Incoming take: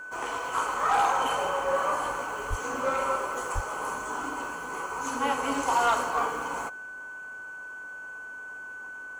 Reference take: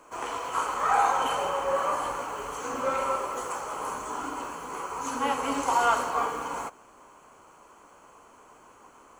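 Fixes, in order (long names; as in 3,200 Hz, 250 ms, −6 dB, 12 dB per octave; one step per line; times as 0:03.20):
clipped peaks rebuilt −17.5 dBFS
notch filter 1,500 Hz, Q 30
0:02.49–0:02.61: high-pass filter 140 Hz 24 dB per octave
0:03.54–0:03.66: high-pass filter 140 Hz 24 dB per octave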